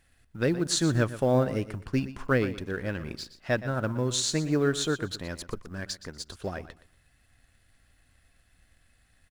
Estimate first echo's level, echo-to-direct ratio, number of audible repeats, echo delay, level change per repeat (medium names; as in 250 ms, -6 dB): -14.5 dB, -14.5 dB, 2, 120 ms, -12.5 dB